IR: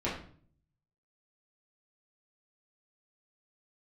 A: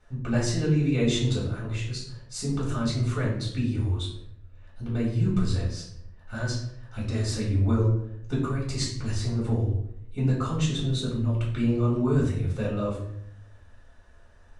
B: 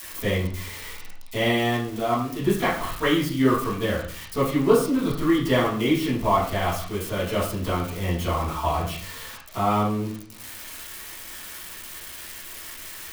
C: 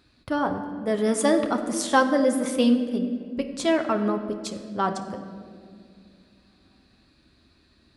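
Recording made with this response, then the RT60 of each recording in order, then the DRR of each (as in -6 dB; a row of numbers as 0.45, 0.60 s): B; 0.70, 0.50, 2.4 s; -5.5, -8.5, 4.5 dB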